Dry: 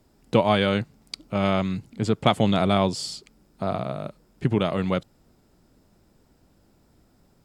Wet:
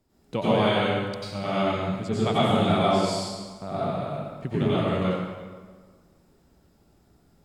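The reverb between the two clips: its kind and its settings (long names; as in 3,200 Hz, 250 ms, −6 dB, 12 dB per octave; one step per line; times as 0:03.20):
dense smooth reverb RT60 1.5 s, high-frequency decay 0.75×, pre-delay 80 ms, DRR −9.5 dB
level −10 dB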